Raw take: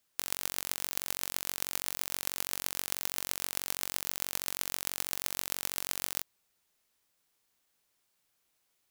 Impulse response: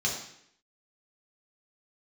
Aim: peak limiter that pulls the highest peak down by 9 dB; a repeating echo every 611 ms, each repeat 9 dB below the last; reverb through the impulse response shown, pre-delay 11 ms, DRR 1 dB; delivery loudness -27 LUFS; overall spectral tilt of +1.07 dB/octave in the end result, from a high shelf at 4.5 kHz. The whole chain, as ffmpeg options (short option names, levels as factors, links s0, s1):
-filter_complex "[0:a]highshelf=f=4500:g=8,alimiter=limit=0.531:level=0:latency=1,aecho=1:1:611|1222|1833|2444:0.355|0.124|0.0435|0.0152,asplit=2[s0][s1];[1:a]atrim=start_sample=2205,adelay=11[s2];[s1][s2]afir=irnorm=-1:irlink=0,volume=0.355[s3];[s0][s3]amix=inputs=2:normalize=0,volume=1.41"